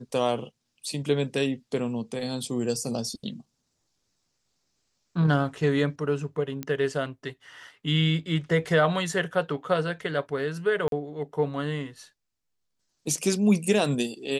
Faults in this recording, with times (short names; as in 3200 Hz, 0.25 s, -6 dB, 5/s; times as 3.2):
6.63 pop -17 dBFS
10.88–10.92 gap 42 ms